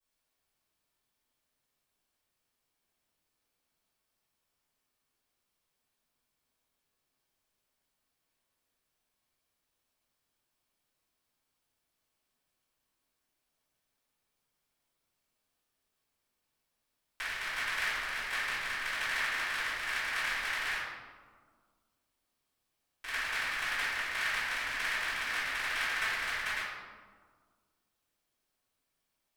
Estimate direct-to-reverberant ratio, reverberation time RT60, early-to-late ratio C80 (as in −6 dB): −19.0 dB, 1.7 s, 1.0 dB